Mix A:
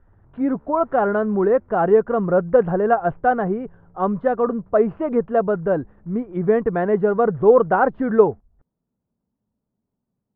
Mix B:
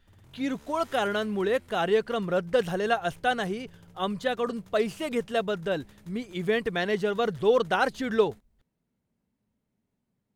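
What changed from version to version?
speech −9.0 dB
master: remove low-pass filter 1,300 Hz 24 dB per octave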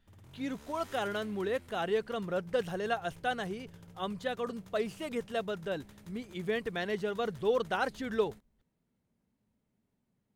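speech −7.0 dB

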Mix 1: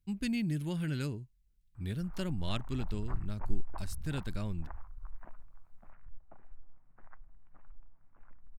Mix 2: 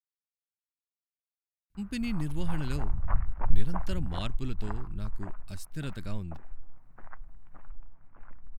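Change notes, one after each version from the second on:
speech: entry +1.70 s
background +9.5 dB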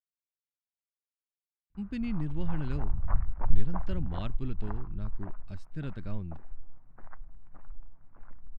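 master: add head-to-tape spacing loss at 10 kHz 27 dB

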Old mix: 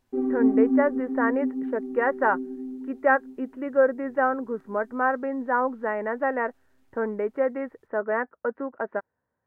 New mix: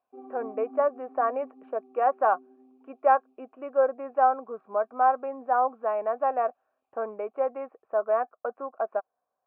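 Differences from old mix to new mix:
speech +9.5 dB
master: add formant filter a

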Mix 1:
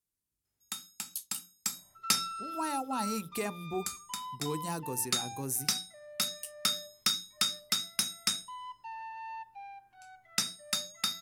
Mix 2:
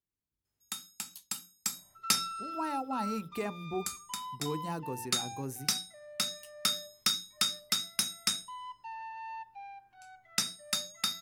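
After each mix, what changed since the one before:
speech: add parametric band 9,900 Hz −13.5 dB 2 octaves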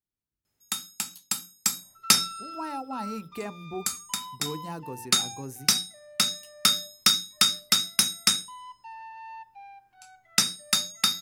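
first sound +8.5 dB

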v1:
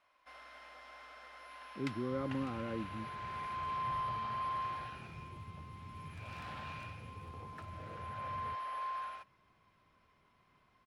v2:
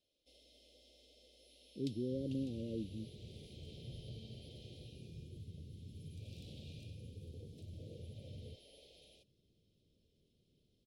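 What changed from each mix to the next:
master: add elliptic band-stop filter 480–3,400 Hz, stop band 60 dB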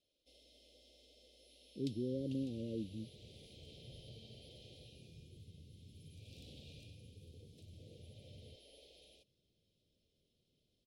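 second sound −6.5 dB

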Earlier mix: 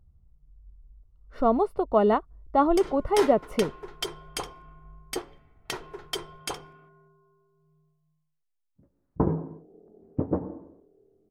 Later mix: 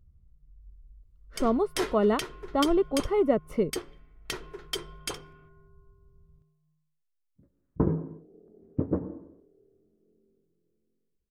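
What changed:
background: entry −1.40 s
master: add parametric band 800 Hz −9 dB 0.81 octaves

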